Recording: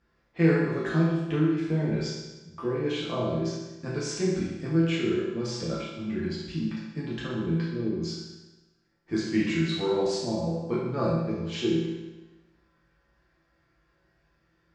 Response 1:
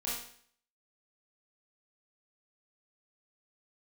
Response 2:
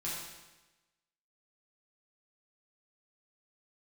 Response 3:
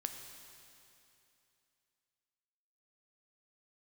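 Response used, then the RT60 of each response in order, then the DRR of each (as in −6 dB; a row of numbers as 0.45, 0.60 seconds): 2; 0.55, 1.1, 2.8 seconds; −7.5, −8.0, 5.0 decibels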